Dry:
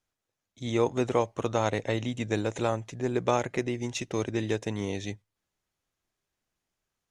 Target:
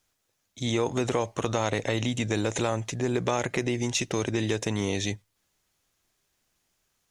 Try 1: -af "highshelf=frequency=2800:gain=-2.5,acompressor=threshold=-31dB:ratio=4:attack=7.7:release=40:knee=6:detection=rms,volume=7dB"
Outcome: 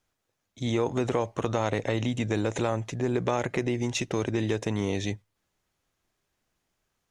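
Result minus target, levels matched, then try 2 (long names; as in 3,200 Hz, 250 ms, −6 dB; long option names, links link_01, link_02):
4,000 Hz band −4.0 dB
-af "highshelf=frequency=2800:gain=6.5,acompressor=threshold=-31dB:ratio=4:attack=7.7:release=40:knee=6:detection=rms,volume=7dB"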